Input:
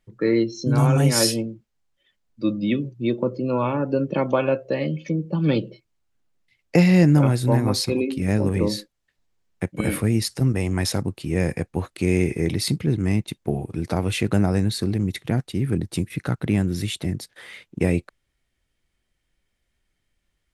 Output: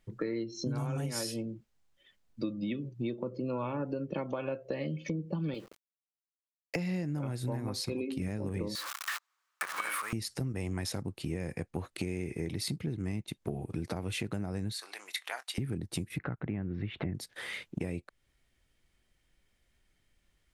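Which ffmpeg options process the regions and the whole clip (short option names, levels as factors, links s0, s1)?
-filter_complex "[0:a]asettb=1/sr,asplit=3[s0][s1][s2];[s0]atrim=end=5.544[s3];[s1]atrim=start=5.54:end=6.76,asetpts=PTS-STARTPTS,afade=t=in:d=0.004:c=qsin,afade=t=out:st=1.216:d=0.004:c=qsin,highpass=52,equalizer=f=97:w=0.35:g=-11.5,aeval=exprs='val(0)*gte(abs(val(0)),0.0075)':c=same[s4];[s2]atrim=start=6.756[s5];[s3][s4]acrossfade=d=0.004:c1=hsin:c2=qsin[s6];[s6][s5]acrossfade=d=0.004:c1=qsin:c2=hsin,asettb=1/sr,asplit=3[s7][s8][s9];[s7]atrim=end=8.754[s10];[s8]atrim=start=8.75:end=10.13,asetpts=PTS-STARTPTS,afade=t=in:d=0.004:c=qsin,afade=t=out:st=1.376:d=0.004:c=qsin,aeval=exprs='val(0)+0.5*0.0398*sgn(val(0))':c=same,highpass=f=1200:t=q:w=4.3[s11];[s9]atrim=start=10.126[s12];[s10][s11]acrossfade=d=0.004:c1=hsin:c2=qsin[s13];[s13][s12]acrossfade=d=0.004:c1=qsin:c2=hsin,asettb=1/sr,asplit=3[s14][s15][s16];[s14]atrim=end=14.734[s17];[s15]atrim=start=14.73:end=15.58,asetpts=PTS-STARTPTS,afade=t=in:d=0.004:c=qsin,afade=t=out:st=0.846:d=0.004:c=qsin,highpass=f=830:w=0.5412,highpass=f=830:w=1.3066,asplit=2[s18][s19];[s19]adelay=23,volume=0.2[s20];[s18][s20]amix=inputs=2:normalize=0,atrim=end_sample=37485[s21];[s16]atrim=start=15.576[s22];[s17][s21]acrossfade=d=0.004:c1=hsin:c2=qsin[s23];[s23][s22]acrossfade=d=0.004:c1=qsin:c2=hsin,asettb=1/sr,asplit=3[s24][s25][s26];[s24]atrim=end=16.184[s27];[s25]atrim=start=16.18:end=17.15,asetpts=PTS-STARTPTS,afade=t=in:d=0.004:c=qsin,afade=t=out:st=0.966:d=0.004:c=qsin,lowpass=f=2300:w=0.5412,lowpass=f=2300:w=1.3066,acompressor=mode=upward:threshold=0.0562:ratio=2.5:attack=3.2:release=140:knee=2.83:detection=peak[s28];[s26]atrim=start=17.146[s29];[s27][s28]acrossfade=d=0.004:c1=hsin:c2=qsin[s30];[s30][s29]acrossfade=d=0.004:c1=qsin:c2=hsin,alimiter=limit=0.224:level=0:latency=1:release=491,acompressor=threshold=0.02:ratio=6,volume=1.19"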